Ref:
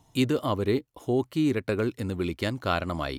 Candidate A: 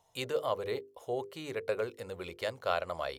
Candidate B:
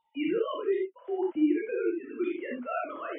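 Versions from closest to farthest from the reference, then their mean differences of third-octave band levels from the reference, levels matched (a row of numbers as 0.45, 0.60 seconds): A, B; 5.0, 15.5 decibels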